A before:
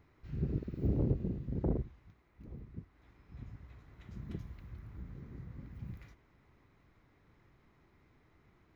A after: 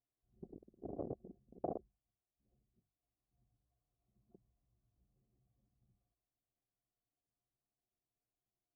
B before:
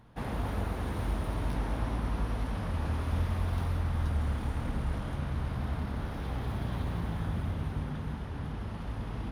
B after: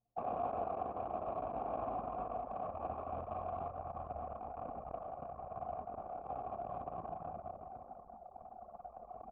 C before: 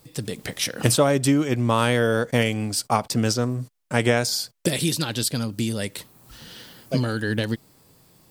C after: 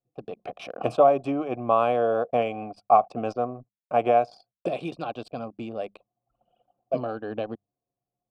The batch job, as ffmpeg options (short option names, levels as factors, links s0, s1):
-filter_complex "[0:a]asplit=3[s0][s1][s2];[s0]bandpass=f=730:t=q:w=8,volume=1[s3];[s1]bandpass=f=1090:t=q:w=8,volume=0.501[s4];[s2]bandpass=f=2440:t=q:w=8,volume=0.355[s5];[s3][s4][s5]amix=inputs=3:normalize=0,highshelf=f=3700:g=-4,bandreject=f=50:t=h:w=6,bandreject=f=100:t=h:w=6,bandreject=f=150:t=h:w=6,bandreject=f=200:t=h:w=6,anlmdn=0.00398,tiltshelf=f=1200:g=6.5,volume=2.51"